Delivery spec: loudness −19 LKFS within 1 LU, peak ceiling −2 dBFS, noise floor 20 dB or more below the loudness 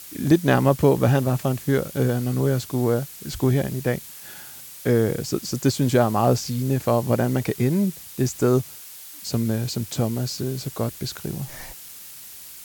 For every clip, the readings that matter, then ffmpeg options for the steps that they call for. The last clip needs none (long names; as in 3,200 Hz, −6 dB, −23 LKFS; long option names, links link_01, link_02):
background noise floor −41 dBFS; target noise floor −43 dBFS; integrated loudness −23.0 LKFS; sample peak −5.0 dBFS; target loudness −19.0 LKFS
→ -af "afftdn=noise_reduction=6:noise_floor=-41"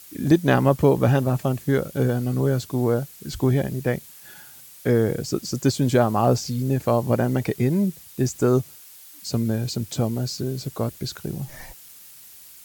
background noise floor −46 dBFS; integrated loudness −23.0 LKFS; sample peak −5.0 dBFS; target loudness −19.0 LKFS
→ -af "volume=4dB,alimiter=limit=-2dB:level=0:latency=1"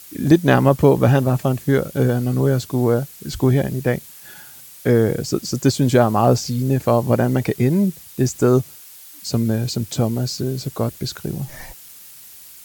integrated loudness −19.0 LKFS; sample peak −2.0 dBFS; background noise floor −42 dBFS